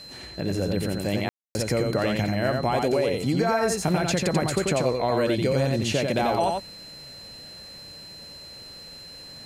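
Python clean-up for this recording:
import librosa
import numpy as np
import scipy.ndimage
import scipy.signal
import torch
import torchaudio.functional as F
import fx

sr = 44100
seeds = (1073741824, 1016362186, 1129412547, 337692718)

y = fx.notch(x, sr, hz=4100.0, q=30.0)
y = fx.fix_ambience(y, sr, seeds[0], print_start_s=8.79, print_end_s=9.29, start_s=1.29, end_s=1.55)
y = fx.fix_echo_inverse(y, sr, delay_ms=89, level_db=-3.5)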